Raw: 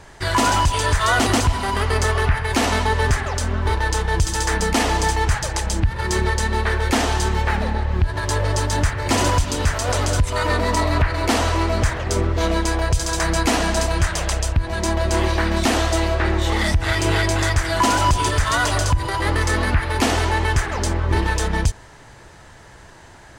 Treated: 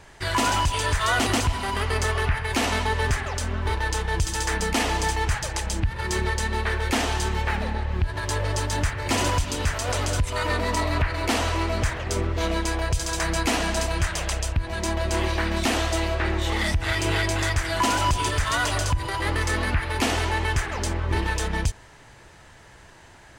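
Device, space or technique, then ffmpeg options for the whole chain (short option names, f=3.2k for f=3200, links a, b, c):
presence and air boost: -af "equalizer=f=2.6k:t=o:w=0.9:g=4,highshelf=f=11k:g=4,volume=-5.5dB"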